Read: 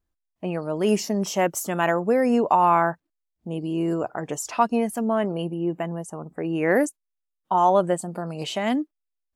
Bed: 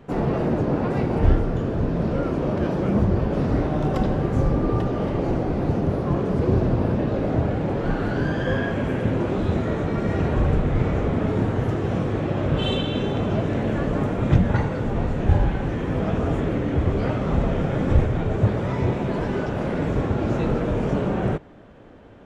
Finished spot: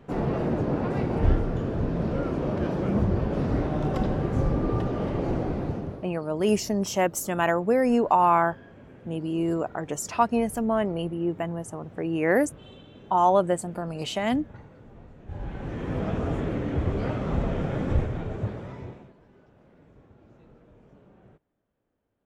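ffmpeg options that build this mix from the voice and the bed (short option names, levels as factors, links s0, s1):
-filter_complex "[0:a]adelay=5600,volume=0.841[s0];[1:a]volume=5.96,afade=t=out:st=5.46:d=0.64:silence=0.0944061,afade=t=in:st=15.27:d=0.66:silence=0.105925,afade=t=out:st=17.75:d=1.39:silence=0.0446684[s1];[s0][s1]amix=inputs=2:normalize=0"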